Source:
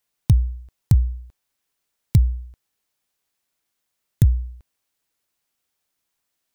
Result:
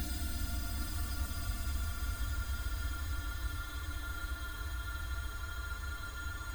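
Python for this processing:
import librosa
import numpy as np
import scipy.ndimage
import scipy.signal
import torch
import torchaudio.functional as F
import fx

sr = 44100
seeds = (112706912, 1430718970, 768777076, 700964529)

y = x + 0.5 * 10.0 ** (-21.5 / 20.0) * np.sign(x)
y = fx.peak_eq(y, sr, hz=210.0, db=-14.5, octaves=1.9)
y = fx.leveller(y, sr, passes=2)
y = fx.resonator_bank(y, sr, root=58, chord='major', decay_s=0.49)
y = fx.rev_spring(y, sr, rt60_s=1.5, pass_ms=(42,), chirp_ms=35, drr_db=12.5)
y = fx.paulstretch(y, sr, seeds[0], factor=36.0, window_s=0.05, from_s=0.38)
y = y + 10.0 ** (-6.5 / 20.0) * np.pad(y, (int(779 * sr / 1000.0), 0))[:len(y)]
y = y * librosa.db_to_amplitude(5.5)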